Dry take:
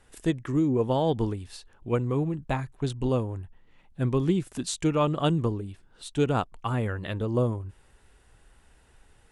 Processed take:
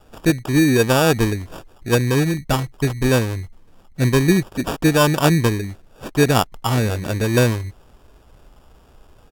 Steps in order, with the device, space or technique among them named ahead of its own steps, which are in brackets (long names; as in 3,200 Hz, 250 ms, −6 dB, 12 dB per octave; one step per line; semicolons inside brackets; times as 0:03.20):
crushed at another speed (tape speed factor 1.25×; decimation without filtering 17×; tape speed factor 0.8×)
level +9 dB